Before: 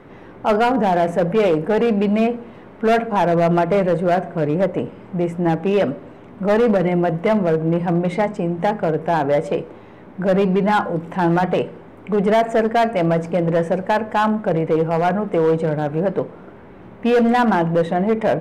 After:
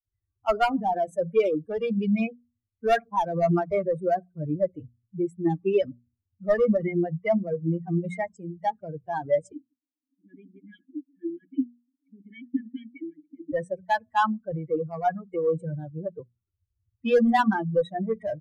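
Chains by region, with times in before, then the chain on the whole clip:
0:09.52–0:13.53: formant filter i + hollow resonant body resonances 270/1,700 Hz, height 14 dB, ringing for 30 ms
whole clip: spectral dynamics exaggerated over time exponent 3; mains-hum notches 60/120/180/240 Hz

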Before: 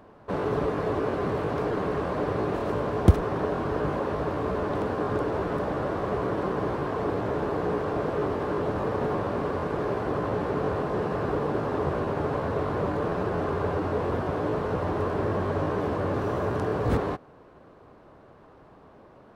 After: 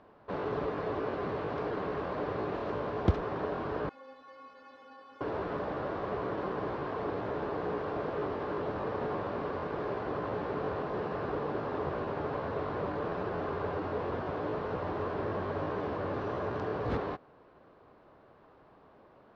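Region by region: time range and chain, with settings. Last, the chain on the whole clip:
0:03.89–0:05.21: spectral tilt +3 dB per octave + stiff-string resonator 260 Hz, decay 0.4 s, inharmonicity 0.008
whole clip: low-pass filter 5,000 Hz 24 dB per octave; low-shelf EQ 290 Hz −5.5 dB; level −5 dB

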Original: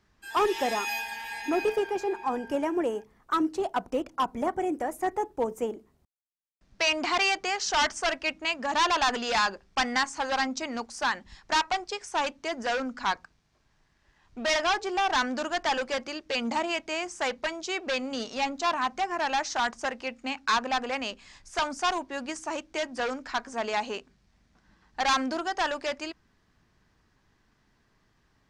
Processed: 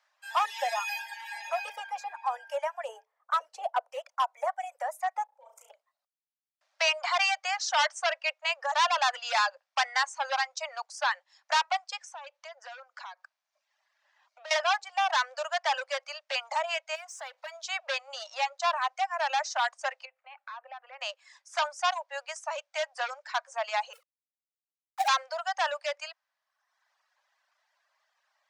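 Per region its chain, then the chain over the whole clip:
0:02.88–0:03.93: parametric band 140 Hz +7.5 dB 2.3 octaves + hollow resonant body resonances 300/440 Hz, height 14 dB, ringing for 85 ms + one half of a high-frequency compander decoder only
0:05.25–0:05.70: output level in coarse steps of 23 dB + flutter between parallel walls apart 5.9 metres, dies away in 0.74 s
0:11.97–0:14.51: parametric band 9,900 Hz −8 dB 0.54 octaves + downward compressor 12 to 1, threshold −38 dBFS
0:16.95–0:17.63: downward compressor 4 to 1, threshold −41 dBFS + power curve on the samples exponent 0.7
0:20.05–0:21.01: low-pass filter 2,200 Hz + downward compressor 4 to 1, threshold −42 dBFS
0:23.93–0:25.08: three sine waves on the formant tracks + low-pass filter 1,200 Hz + log-companded quantiser 4 bits
whole clip: Butterworth high-pass 550 Hz 96 dB per octave; reverb reduction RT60 0.99 s; high-shelf EQ 11,000 Hz −7.5 dB

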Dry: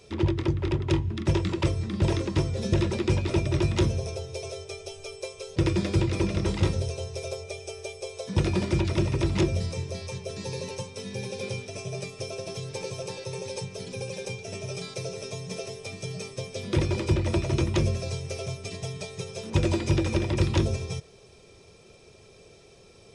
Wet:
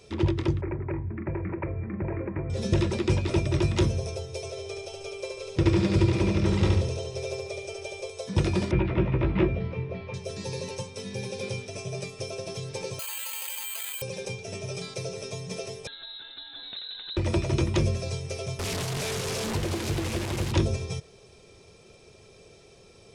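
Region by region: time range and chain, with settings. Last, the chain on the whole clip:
0:00.61–0:02.50: downward compressor 5 to 1, threshold −24 dBFS + Chebyshev low-pass with heavy ripple 2,400 Hz, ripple 3 dB
0:04.50–0:08.10: high-shelf EQ 8,700 Hz −10.5 dB + repeating echo 71 ms, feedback 43%, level −3 dB
0:08.71–0:10.14: low-pass filter 2,600 Hz 24 dB per octave + double-tracking delay 16 ms −4 dB
0:12.99–0:14.02: high-pass filter 1,100 Hz 24 dB per octave + bad sample-rate conversion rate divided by 8×, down filtered, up zero stuff + envelope flattener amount 100%
0:15.87–0:17.17: downward compressor 4 to 1, threshold −39 dBFS + voice inversion scrambler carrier 4,000 Hz
0:18.59–0:20.52: linear delta modulator 64 kbit/s, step −24 dBFS + downward compressor 2 to 1, threshold −28 dBFS + highs frequency-modulated by the lows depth 0.61 ms
whole clip: no processing

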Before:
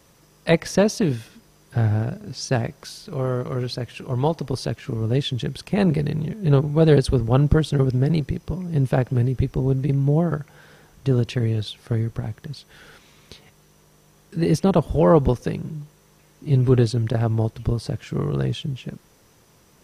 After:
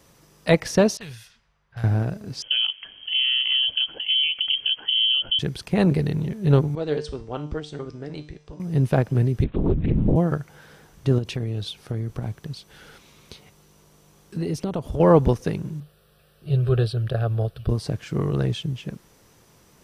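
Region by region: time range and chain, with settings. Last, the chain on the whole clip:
0:00.97–0:01.84: low-pass that shuts in the quiet parts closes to 1,200 Hz, open at −21.5 dBFS + guitar amp tone stack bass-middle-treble 10-0-10
0:02.42–0:05.39: spectral tilt −3 dB per octave + downward compressor 12 to 1, threshold −18 dBFS + voice inversion scrambler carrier 3,200 Hz
0:06.75–0:08.60: Butterworth low-pass 8,000 Hz + parametric band 140 Hz −12.5 dB 1.2 octaves + tuned comb filter 150 Hz, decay 0.46 s, mix 70%
0:09.44–0:10.16: linear-prediction vocoder at 8 kHz whisper + highs frequency-modulated by the lows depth 0.34 ms
0:11.18–0:15.00: parametric band 1,800 Hz −4 dB 0.31 octaves + downward compressor 5 to 1, threshold −23 dBFS
0:15.80–0:17.69: parametric band 2,100 Hz +4 dB 0.39 octaves + phaser with its sweep stopped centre 1,400 Hz, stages 8
whole clip: no processing

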